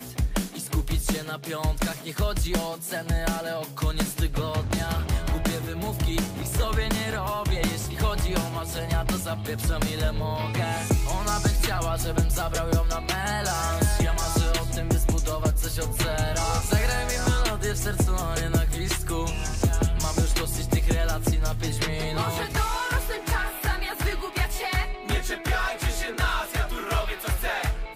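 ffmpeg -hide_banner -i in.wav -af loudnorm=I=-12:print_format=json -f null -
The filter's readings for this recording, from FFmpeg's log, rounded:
"input_i" : "-26.8",
"input_tp" : "-11.0",
"input_lra" : "2.5",
"input_thresh" : "-36.8",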